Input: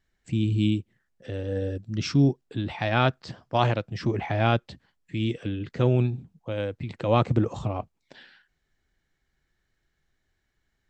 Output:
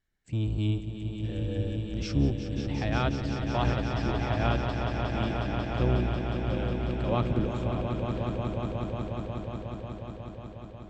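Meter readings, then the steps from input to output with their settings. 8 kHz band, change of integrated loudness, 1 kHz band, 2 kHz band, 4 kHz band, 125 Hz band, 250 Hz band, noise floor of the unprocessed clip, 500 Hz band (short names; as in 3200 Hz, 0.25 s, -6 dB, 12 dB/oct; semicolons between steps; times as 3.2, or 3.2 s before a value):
n/a, -4.0 dB, -3.5 dB, -3.5 dB, -3.5 dB, -2.0 dB, -2.5 dB, -77 dBFS, -3.5 dB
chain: octaver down 1 oct, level -1 dB; swelling echo 0.181 s, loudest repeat 5, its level -8 dB; gain -7.5 dB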